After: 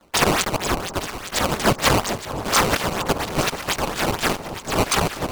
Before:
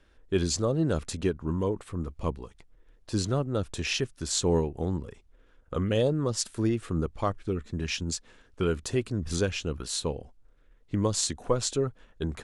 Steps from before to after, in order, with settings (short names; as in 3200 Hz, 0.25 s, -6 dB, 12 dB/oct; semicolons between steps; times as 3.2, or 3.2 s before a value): FFT order left unsorted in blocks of 16 samples; gate with hold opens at -52 dBFS; tilt +4.5 dB/oct; vocal rider within 4 dB 2 s; decimation with a swept rate 35×, swing 160% 1.8 Hz; transient shaper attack -5 dB, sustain +8 dB; speed mistake 33 rpm record played at 78 rpm; on a send: echo with dull and thin repeats by turns 0.432 s, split 1100 Hz, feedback 72%, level -9.5 dB; on the sum: gain -1.5 dB